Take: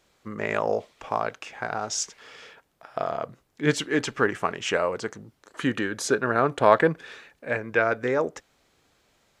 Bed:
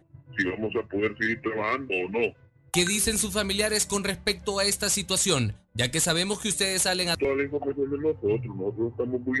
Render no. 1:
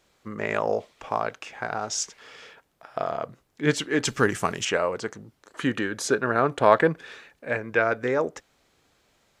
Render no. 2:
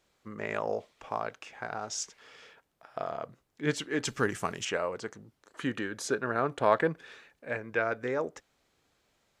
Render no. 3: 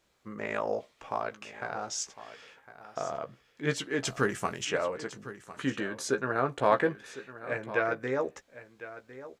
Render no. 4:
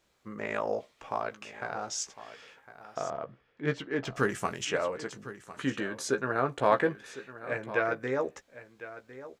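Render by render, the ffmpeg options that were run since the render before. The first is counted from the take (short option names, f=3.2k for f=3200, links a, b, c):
-filter_complex "[0:a]asettb=1/sr,asplit=3[a][b][c];[a]atrim=end=4.054[d];[b]atrim=start=4.05:end=4.65,asetpts=PTS-STARTPTS,afade=t=in:d=0.004:c=qsin,afade=t=out:st=0.596:d=0.004:c=qsin,bass=f=250:g=7,treble=f=4k:g=14[e];[c]atrim=start=4.646[f];[d][e]acrossfade=d=0.004:c1=hsin:c2=qsin[g];[g][f]acrossfade=d=0.004:c1=qsin:c2=hsin"
-af "volume=-7dB"
-filter_complex "[0:a]asplit=2[a][b];[b]adelay=15,volume=-8dB[c];[a][c]amix=inputs=2:normalize=0,aecho=1:1:1055:0.178"
-filter_complex "[0:a]asettb=1/sr,asplit=3[a][b][c];[a]atrim=end=3.104[d];[b]atrim=start=3.1:end=4.16,asetpts=PTS-STARTPTS,afade=t=in:d=0.004:c=qsin,afade=t=out:st=1.056:d=0.004:c=qsin,adynamicsmooth=sensitivity=1:basefreq=2.6k[e];[c]atrim=start=4.156[f];[d][e]acrossfade=d=0.004:c1=hsin:c2=qsin[g];[g][f]acrossfade=d=0.004:c1=qsin:c2=hsin"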